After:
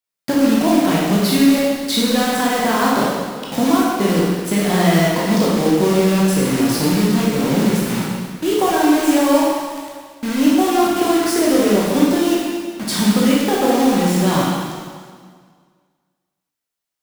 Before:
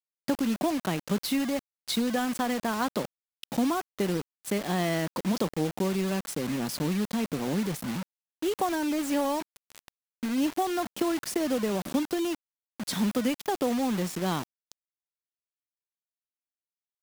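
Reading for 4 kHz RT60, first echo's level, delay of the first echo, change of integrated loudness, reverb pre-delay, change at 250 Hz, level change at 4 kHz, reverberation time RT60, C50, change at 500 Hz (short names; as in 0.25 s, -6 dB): 1.7 s, none, none, +13.0 dB, 8 ms, +13.5 dB, +13.0 dB, 1.8 s, -1.5 dB, +13.5 dB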